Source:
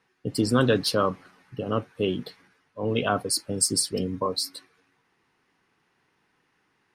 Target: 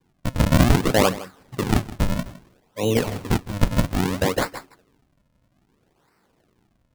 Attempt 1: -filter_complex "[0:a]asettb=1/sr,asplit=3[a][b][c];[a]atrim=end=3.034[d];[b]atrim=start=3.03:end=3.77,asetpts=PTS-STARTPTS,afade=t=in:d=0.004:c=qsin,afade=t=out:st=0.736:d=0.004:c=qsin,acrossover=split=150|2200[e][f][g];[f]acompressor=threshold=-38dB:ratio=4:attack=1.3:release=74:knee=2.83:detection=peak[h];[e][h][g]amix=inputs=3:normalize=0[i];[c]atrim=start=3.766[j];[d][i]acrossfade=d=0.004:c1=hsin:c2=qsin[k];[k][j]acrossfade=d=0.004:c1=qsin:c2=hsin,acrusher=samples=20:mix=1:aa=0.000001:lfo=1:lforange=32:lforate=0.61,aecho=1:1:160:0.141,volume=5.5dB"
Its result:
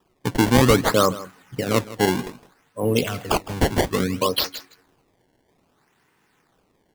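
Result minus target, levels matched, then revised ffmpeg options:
decimation with a swept rate: distortion -14 dB
-filter_complex "[0:a]asettb=1/sr,asplit=3[a][b][c];[a]atrim=end=3.034[d];[b]atrim=start=3.03:end=3.77,asetpts=PTS-STARTPTS,afade=t=in:d=0.004:c=qsin,afade=t=out:st=0.736:d=0.004:c=qsin,acrossover=split=150|2200[e][f][g];[f]acompressor=threshold=-38dB:ratio=4:attack=1.3:release=74:knee=2.83:detection=peak[h];[e][h][g]amix=inputs=3:normalize=0[i];[c]atrim=start=3.766[j];[d][i]acrossfade=d=0.004:c1=hsin:c2=qsin[k];[k][j]acrossfade=d=0.004:c1=qsin:c2=hsin,acrusher=samples=64:mix=1:aa=0.000001:lfo=1:lforange=102:lforate=0.61,aecho=1:1:160:0.141,volume=5.5dB"

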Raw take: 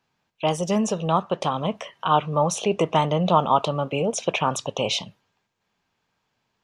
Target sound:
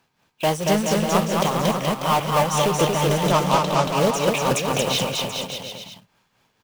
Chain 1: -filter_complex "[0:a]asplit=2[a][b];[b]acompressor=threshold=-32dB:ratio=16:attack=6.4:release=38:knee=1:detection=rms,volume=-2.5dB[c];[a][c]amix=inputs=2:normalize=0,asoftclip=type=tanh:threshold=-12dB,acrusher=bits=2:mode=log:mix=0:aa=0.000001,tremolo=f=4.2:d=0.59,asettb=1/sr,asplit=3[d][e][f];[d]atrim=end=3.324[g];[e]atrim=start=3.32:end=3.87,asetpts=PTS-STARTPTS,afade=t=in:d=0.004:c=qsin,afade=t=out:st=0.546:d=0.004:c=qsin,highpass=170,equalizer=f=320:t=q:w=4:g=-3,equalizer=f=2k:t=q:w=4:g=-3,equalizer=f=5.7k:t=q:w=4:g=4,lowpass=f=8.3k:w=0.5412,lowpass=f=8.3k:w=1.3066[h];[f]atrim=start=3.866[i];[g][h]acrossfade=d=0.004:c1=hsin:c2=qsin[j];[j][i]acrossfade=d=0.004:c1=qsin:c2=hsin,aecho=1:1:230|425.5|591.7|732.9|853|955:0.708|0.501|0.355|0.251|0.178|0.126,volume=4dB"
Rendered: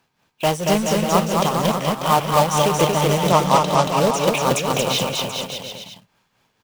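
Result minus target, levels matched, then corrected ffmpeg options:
soft clip: distortion -7 dB
-filter_complex "[0:a]asplit=2[a][b];[b]acompressor=threshold=-32dB:ratio=16:attack=6.4:release=38:knee=1:detection=rms,volume=-2.5dB[c];[a][c]amix=inputs=2:normalize=0,asoftclip=type=tanh:threshold=-19dB,acrusher=bits=2:mode=log:mix=0:aa=0.000001,tremolo=f=4.2:d=0.59,asettb=1/sr,asplit=3[d][e][f];[d]atrim=end=3.324[g];[e]atrim=start=3.32:end=3.87,asetpts=PTS-STARTPTS,afade=t=in:d=0.004:c=qsin,afade=t=out:st=0.546:d=0.004:c=qsin,highpass=170,equalizer=f=320:t=q:w=4:g=-3,equalizer=f=2k:t=q:w=4:g=-3,equalizer=f=5.7k:t=q:w=4:g=4,lowpass=f=8.3k:w=0.5412,lowpass=f=8.3k:w=1.3066[h];[f]atrim=start=3.866[i];[g][h]acrossfade=d=0.004:c1=hsin:c2=qsin[j];[j][i]acrossfade=d=0.004:c1=qsin:c2=hsin,aecho=1:1:230|425.5|591.7|732.9|853|955:0.708|0.501|0.355|0.251|0.178|0.126,volume=4dB"

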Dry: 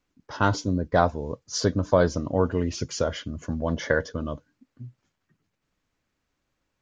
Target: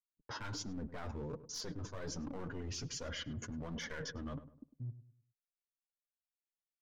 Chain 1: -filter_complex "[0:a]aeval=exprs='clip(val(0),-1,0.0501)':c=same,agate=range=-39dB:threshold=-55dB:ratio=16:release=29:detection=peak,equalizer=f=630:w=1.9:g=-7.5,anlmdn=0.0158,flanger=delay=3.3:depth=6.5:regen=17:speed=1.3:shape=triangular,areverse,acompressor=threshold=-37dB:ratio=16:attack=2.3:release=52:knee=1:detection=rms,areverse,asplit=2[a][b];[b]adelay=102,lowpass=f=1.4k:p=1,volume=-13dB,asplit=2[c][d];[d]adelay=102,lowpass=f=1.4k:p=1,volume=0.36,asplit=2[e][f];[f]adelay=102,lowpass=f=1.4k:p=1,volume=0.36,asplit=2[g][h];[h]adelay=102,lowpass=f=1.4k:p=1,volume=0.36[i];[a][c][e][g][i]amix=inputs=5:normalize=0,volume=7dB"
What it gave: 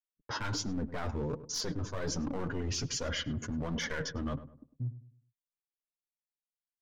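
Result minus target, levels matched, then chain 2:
compressor: peak gain reduction -8 dB
-filter_complex "[0:a]aeval=exprs='clip(val(0),-1,0.0501)':c=same,agate=range=-39dB:threshold=-55dB:ratio=16:release=29:detection=peak,equalizer=f=630:w=1.9:g=-7.5,anlmdn=0.0158,flanger=delay=3.3:depth=6.5:regen=17:speed=1.3:shape=triangular,areverse,acompressor=threshold=-45.5dB:ratio=16:attack=2.3:release=52:knee=1:detection=rms,areverse,asplit=2[a][b];[b]adelay=102,lowpass=f=1.4k:p=1,volume=-13dB,asplit=2[c][d];[d]adelay=102,lowpass=f=1.4k:p=1,volume=0.36,asplit=2[e][f];[f]adelay=102,lowpass=f=1.4k:p=1,volume=0.36,asplit=2[g][h];[h]adelay=102,lowpass=f=1.4k:p=1,volume=0.36[i];[a][c][e][g][i]amix=inputs=5:normalize=0,volume=7dB"

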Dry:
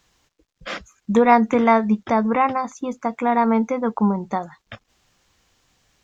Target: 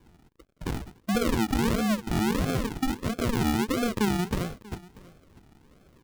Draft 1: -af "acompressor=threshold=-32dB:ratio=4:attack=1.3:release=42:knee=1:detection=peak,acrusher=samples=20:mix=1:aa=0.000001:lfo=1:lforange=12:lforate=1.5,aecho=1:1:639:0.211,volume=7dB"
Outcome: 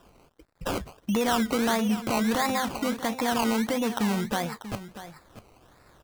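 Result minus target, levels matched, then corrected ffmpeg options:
decimation with a swept rate: distortion -13 dB; echo-to-direct +8 dB
-af "acompressor=threshold=-32dB:ratio=4:attack=1.3:release=42:knee=1:detection=peak,acrusher=samples=65:mix=1:aa=0.000001:lfo=1:lforange=39:lforate=1.5,aecho=1:1:639:0.0841,volume=7dB"

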